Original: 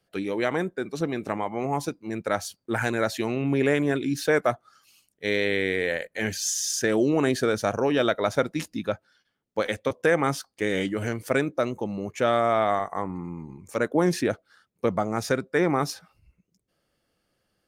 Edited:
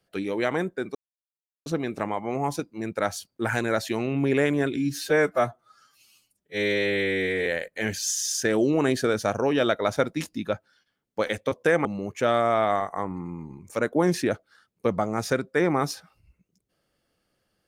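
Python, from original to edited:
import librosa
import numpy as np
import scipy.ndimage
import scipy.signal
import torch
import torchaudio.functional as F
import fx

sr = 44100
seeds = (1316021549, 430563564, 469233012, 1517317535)

y = fx.edit(x, sr, fx.insert_silence(at_s=0.95, length_s=0.71),
    fx.stretch_span(start_s=4.05, length_s=1.8, factor=1.5),
    fx.cut(start_s=10.24, length_s=1.6), tone=tone)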